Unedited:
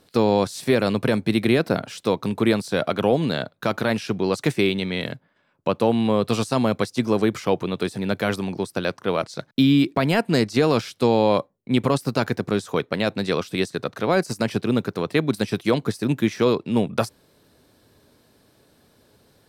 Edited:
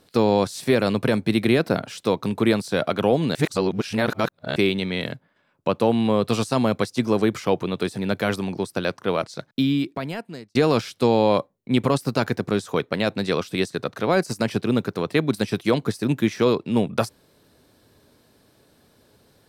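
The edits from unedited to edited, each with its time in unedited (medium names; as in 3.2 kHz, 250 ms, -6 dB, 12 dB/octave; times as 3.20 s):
3.35–4.56 s: reverse
9.12–10.55 s: fade out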